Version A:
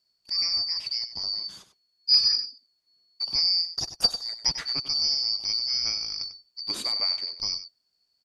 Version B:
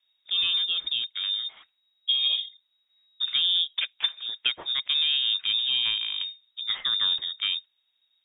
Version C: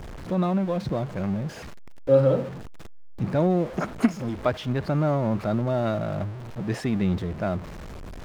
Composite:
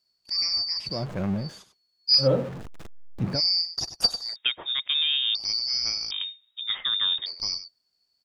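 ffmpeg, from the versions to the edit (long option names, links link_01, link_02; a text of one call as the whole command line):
ffmpeg -i take0.wav -i take1.wav -i take2.wav -filter_complex "[2:a]asplit=2[link_01][link_02];[1:a]asplit=2[link_03][link_04];[0:a]asplit=5[link_05][link_06][link_07][link_08][link_09];[link_05]atrim=end=1.07[link_10];[link_01]atrim=start=0.83:end=1.61[link_11];[link_06]atrim=start=1.37:end=2.28[link_12];[link_02]atrim=start=2.18:end=3.41[link_13];[link_07]atrim=start=3.31:end=4.362[link_14];[link_03]atrim=start=4.358:end=5.352[link_15];[link_08]atrim=start=5.348:end=6.112[link_16];[link_04]atrim=start=6.108:end=7.262[link_17];[link_09]atrim=start=7.258[link_18];[link_10][link_11]acrossfade=duration=0.24:curve1=tri:curve2=tri[link_19];[link_19][link_12]acrossfade=duration=0.24:curve1=tri:curve2=tri[link_20];[link_20][link_13]acrossfade=duration=0.1:curve1=tri:curve2=tri[link_21];[link_21][link_14]acrossfade=duration=0.1:curve1=tri:curve2=tri[link_22];[link_22][link_15]acrossfade=duration=0.004:curve1=hsin:curve2=hsin[link_23];[link_23][link_16]acrossfade=duration=0.004:curve1=hsin:curve2=hsin[link_24];[link_24][link_17]acrossfade=duration=0.004:curve1=hsin:curve2=hsin[link_25];[link_25][link_18]acrossfade=duration=0.004:curve1=hsin:curve2=hsin" out.wav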